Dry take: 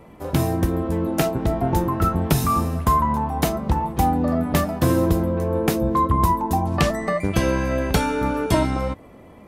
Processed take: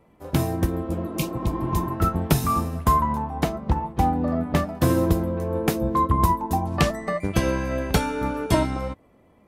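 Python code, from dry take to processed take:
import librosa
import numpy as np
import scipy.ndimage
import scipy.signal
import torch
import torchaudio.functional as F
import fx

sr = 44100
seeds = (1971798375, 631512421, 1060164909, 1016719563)

y = fx.spec_repair(x, sr, seeds[0], start_s=0.93, length_s=0.94, low_hz=250.0, high_hz=2100.0, source='both')
y = fx.lowpass(y, sr, hz=3400.0, slope=6, at=(3.22, 4.75))
y = fx.upward_expand(y, sr, threshold_db=-38.0, expansion=1.5)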